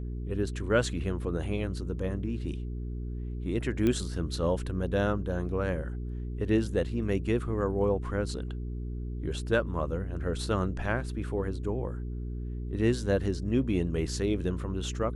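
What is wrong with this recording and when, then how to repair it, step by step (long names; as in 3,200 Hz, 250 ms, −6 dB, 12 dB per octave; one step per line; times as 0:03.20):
mains hum 60 Hz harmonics 7 −35 dBFS
0:03.87: click −16 dBFS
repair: click removal
hum removal 60 Hz, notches 7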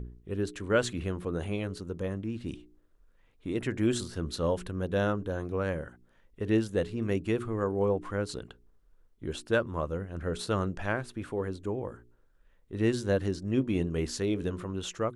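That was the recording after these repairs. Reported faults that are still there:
none of them is left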